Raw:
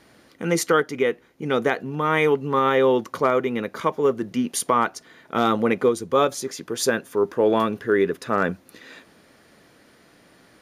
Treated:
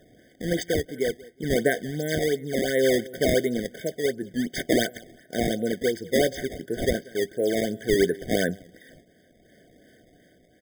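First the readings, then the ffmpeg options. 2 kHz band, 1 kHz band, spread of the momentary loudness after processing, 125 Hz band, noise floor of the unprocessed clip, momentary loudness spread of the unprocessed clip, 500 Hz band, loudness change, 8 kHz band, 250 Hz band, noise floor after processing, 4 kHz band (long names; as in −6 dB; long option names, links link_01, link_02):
−3.5 dB, −15.0 dB, 8 LU, −0.5 dB, −55 dBFS, 7 LU, −3.0 dB, −3.5 dB, −3.5 dB, −2.0 dB, −59 dBFS, +0.5 dB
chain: -filter_complex "[0:a]asplit=2[link_01][link_02];[link_02]adelay=183,lowpass=frequency=4300:poles=1,volume=-22.5dB,asplit=2[link_03][link_04];[link_04]adelay=183,lowpass=frequency=4300:poles=1,volume=0.17[link_05];[link_03][link_05]amix=inputs=2:normalize=0[link_06];[link_01][link_06]amix=inputs=2:normalize=0,acrusher=samples=17:mix=1:aa=0.000001:lfo=1:lforange=27.2:lforate=2.8,tremolo=f=0.61:d=0.47,afftfilt=real='re*eq(mod(floor(b*sr/1024/750),2),0)':imag='im*eq(mod(floor(b*sr/1024/750),2),0)':win_size=1024:overlap=0.75"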